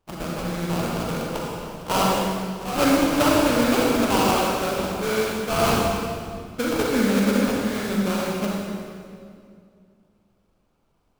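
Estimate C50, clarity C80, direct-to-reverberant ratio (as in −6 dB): −2.0 dB, 0.0 dB, −3.5 dB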